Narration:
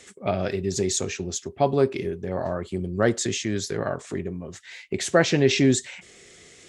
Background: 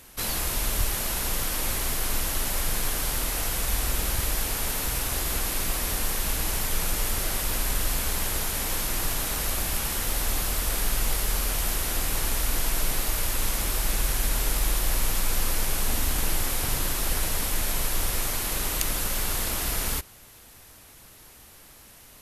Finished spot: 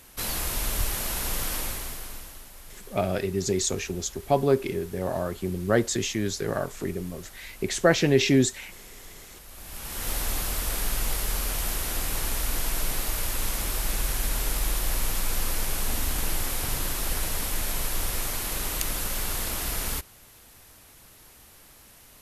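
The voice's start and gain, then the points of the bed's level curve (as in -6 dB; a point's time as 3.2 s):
2.70 s, -1.0 dB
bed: 1.55 s -1.5 dB
2.5 s -19.5 dB
9.47 s -19.5 dB
10.09 s -2 dB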